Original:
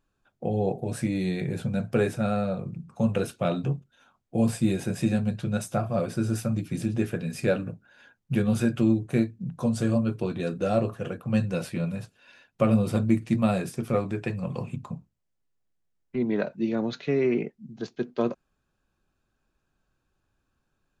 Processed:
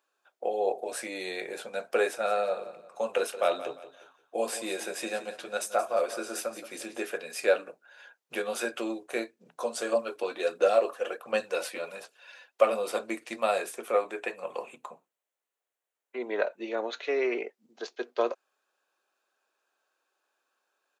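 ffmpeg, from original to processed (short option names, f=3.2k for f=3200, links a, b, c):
-filter_complex "[0:a]asplit=3[a][b][c];[a]afade=t=out:st=2.24:d=0.02[d];[b]aecho=1:1:175|350|525:0.211|0.0676|0.0216,afade=t=in:st=2.24:d=0.02,afade=t=out:st=7.16:d=0.02[e];[c]afade=t=in:st=7.16:d=0.02[f];[d][e][f]amix=inputs=3:normalize=0,asettb=1/sr,asplit=3[g][h][i];[g]atrim=end=9.924[j];[h]atrim=start=9.92:end=12.68,asetpts=PTS-STARTPTS,afade=t=in:d=0.004:c=qsin,afade=t=out:st=2.756:d=0.004:c=qsin,aphaser=in_gain=1:out_gain=1:delay=4:decay=0.39:speed=1.4:type=sinusoidal[k];[i]atrim=start=12.676[l];[j][k]acrossfade=d=0.004:c1=hsin:c2=qsin[m];[m][l]acrossfade=d=0.004:c1=qsin:c2=hsin,asettb=1/sr,asplit=3[n][o][p];[n]atrim=end=13.664[q];[o]atrim=start=13.66:end=17.04,asetpts=PTS-STARTPTS,afade=t=in:d=0.004:c=qsin,afade=t=out:st=3.376:d=0.004:c=qsin,equalizer=f=5k:t=o:w=0.42:g=-9.5[r];[p]atrim=start=17.036[s];[q][r]acrossfade=d=0.004:c1=hsin:c2=qsin[t];[t][s]acrossfade=d=0.004:c1=qsin:c2=hsin,highpass=f=460:w=0.5412,highpass=f=460:w=1.3066,volume=3dB"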